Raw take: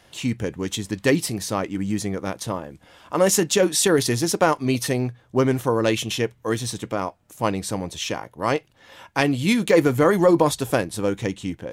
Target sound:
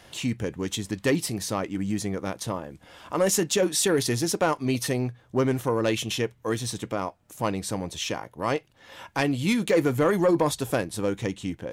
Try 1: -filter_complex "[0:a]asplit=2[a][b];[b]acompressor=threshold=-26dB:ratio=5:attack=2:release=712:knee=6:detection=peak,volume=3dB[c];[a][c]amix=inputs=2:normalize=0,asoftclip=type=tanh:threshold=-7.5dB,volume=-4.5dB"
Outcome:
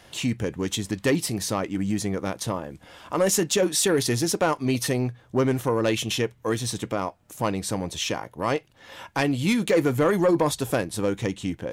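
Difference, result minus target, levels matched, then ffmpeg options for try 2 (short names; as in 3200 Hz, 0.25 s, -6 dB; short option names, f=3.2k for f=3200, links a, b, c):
compressor: peak gain reduction -8.5 dB
-filter_complex "[0:a]asplit=2[a][b];[b]acompressor=threshold=-36.5dB:ratio=5:attack=2:release=712:knee=6:detection=peak,volume=3dB[c];[a][c]amix=inputs=2:normalize=0,asoftclip=type=tanh:threshold=-7.5dB,volume=-4.5dB"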